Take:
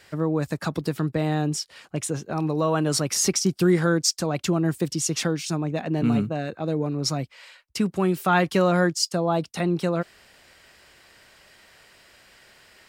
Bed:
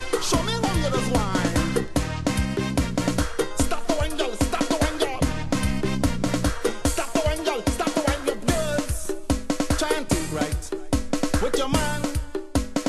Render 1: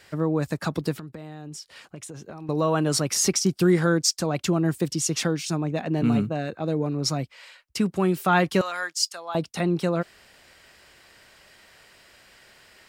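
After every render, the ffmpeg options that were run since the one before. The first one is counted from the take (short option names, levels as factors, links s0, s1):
-filter_complex "[0:a]asettb=1/sr,asplit=3[s0][s1][s2];[s0]atrim=end=0.934[s3];[s1]atrim=start=0.93:end=2.49,asetpts=PTS-STARTPTS,afade=t=in:d=0.004:c=qsin,afade=t=out:st=1.556:d=0.004:c=qsin,acompressor=threshold=0.0178:ratio=8:attack=3.2:release=140:knee=1:detection=peak[s4];[s2]atrim=start=2.486[s5];[s3][s4]acrossfade=d=0.004:c1=hsin:c2=qsin[s6];[s6][s5]acrossfade=d=0.004:c1=qsin:c2=hsin,asettb=1/sr,asplit=3[s7][s8][s9];[s7]atrim=end=8.614[s10];[s8]atrim=start=8.61:end=9.35,asetpts=PTS-STARTPTS,afade=t=in:d=0.004:c=qsin,afade=t=out:st=0.736:d=0.004:c=qsin,highpass=1300[s11];[s9]atrim=start=9.346[s12];[s10][s11]acrossfade=d=0.004:c1=hsin:c2=qsin[s13];[s13][s12]acrossfade=d=0.004:c1=qsin:c2=hsin"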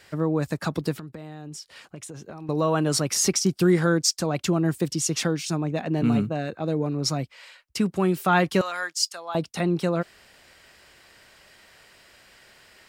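-af anull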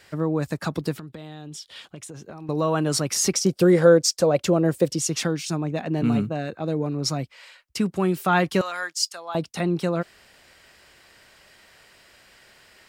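-filter_complex "[0:a]asettb=1/sr,asplit=3[s0][s1][s2];[s0]atrim=end=1.104[s3];[s1]atrim=start=1.1:end=1.97,asetpts=PTS-STARTPTS,afade=t=in:d=0.004:c=qsin,afade=t=out:st=0.866:d=0.004:c=qsin,equalizer=f=3400:w=3.6:g=13.5[s4];[s2]atrim=start=1.966[s5];[s3][s4]acrossfade=d=0.004:c1=hsin:c2=qsin[s6];[s6][s5]acrossfade=d=0.004:c1=qsin:c2=hsin,asettb=1/sr,asplit=3[s7][s8][s9];[s7]atrim=end=3.344[s10];[s8]atrim=start=3.34:end=4.99,asetpts=PTS-STARTPTS,afade=t=in:d=0.004:c=qsin,afade=t=out:st=1.646:d=0.004:c=qsin,equalizer=f=530:t=o:w=0.53:g=14[s11];[s9]atrim=start=4.986[s12];[s10][s11]acrossfade=d=0.004:c1=hsin:c2=qsin[s13];[s13][s12]acrossfade=d=0.004:c1=qsin:c2=hsin"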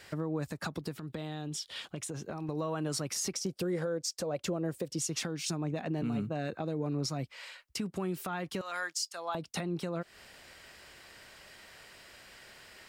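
-af "acompressor=threshold=0.0355:ratio=6,alimiter=limit=0.0631:level=0:latency=1:release=176"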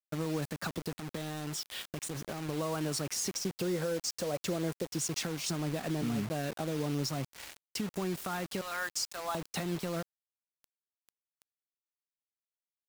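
-af "acrusher=bits=6:mix=0:aa=0.000001"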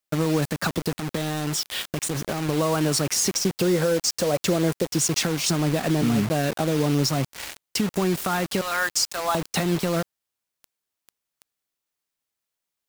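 -af "volume=3.76"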